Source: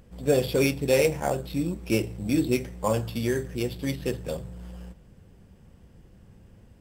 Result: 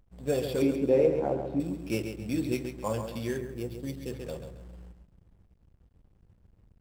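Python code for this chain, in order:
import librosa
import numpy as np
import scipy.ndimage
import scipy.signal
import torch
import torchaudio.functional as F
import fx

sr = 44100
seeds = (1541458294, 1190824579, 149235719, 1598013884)

y = fx.curve_eq(x, sr, hz=(150.0, 330.0, 11000.0), db=(0, 9, -25), at=(0.62, 1.6))
y = fx.echo_feedback(y, sr, ms=136, feedback_pct=40, wet_db=-7.5)
y = fx.backlash(y, sr, play_db=-44.0)
y = fx.peak_eq(y, sr, hz=fx.line((3.36, 6300.0), (4.1, 1200.0)), db=-8.0, octaves=2.6, at=(3.36, 4.1), fade=0.02)
y = y * 10.0 ** (-6.5 / 20.0)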